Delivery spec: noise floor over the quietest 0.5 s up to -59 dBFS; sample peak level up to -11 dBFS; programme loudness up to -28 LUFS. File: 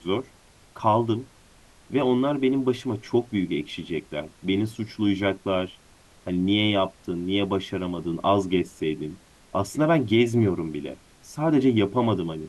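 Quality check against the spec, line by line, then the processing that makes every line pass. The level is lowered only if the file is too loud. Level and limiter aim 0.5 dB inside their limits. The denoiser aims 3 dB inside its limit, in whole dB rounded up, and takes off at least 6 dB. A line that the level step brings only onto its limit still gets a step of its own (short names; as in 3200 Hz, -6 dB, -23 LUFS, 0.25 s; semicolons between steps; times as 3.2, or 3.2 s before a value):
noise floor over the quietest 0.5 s -54 dBFS: fail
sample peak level -7.0 dBFS: fail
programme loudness -25.0 LUFS: fail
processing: denoiser 6 dB, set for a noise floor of -54 dBFS; gain -3.5 dB; limiter -11.5 dBFS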